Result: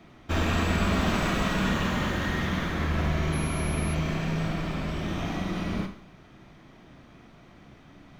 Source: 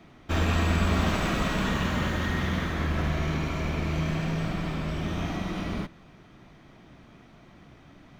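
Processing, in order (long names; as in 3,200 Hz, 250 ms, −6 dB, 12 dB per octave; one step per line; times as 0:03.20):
four-comb reverb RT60 0.53 s, combs from 31 ms, DRR 7.5 dB
0:03.32–0:03.93: steady tone 11,000 Hz −41 dBFS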